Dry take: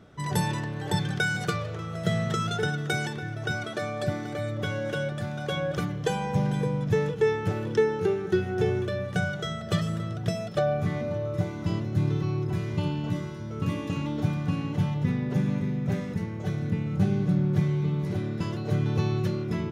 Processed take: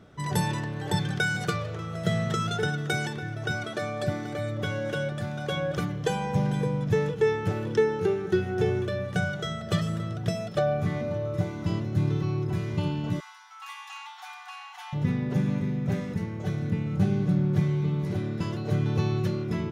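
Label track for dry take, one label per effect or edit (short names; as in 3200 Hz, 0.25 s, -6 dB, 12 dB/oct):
13.200000	14.930000	brick-wall FIR high-pass 700 Hz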